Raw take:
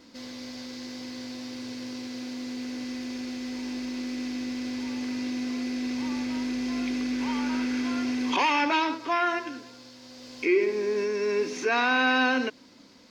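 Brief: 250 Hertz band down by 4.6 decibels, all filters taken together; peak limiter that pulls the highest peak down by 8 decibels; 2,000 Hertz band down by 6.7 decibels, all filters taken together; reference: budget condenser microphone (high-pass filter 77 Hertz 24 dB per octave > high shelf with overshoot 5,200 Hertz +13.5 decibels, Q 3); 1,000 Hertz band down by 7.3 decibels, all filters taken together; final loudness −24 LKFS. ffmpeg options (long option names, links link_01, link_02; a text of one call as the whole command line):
ffmpeg -i in.wav -af "equalizer=frequency=250:width_type=o:gain=-4.5,equalizer=frequency=1000:width_type=o:gain=-7.5,equalizer=frequency=2000:width_type=o:gain=-3.5,alimiter=level_in=0.5dB:limit=-24dB:level=0:latency=1,volume=-0.5dB,highpass=frequency=77:width=0.5412,highpass=frequency=77:width=1.3066,highshelf=frequency=5200:width_type=q:width=3:gain=13.5,volume=8.5dB" out.wav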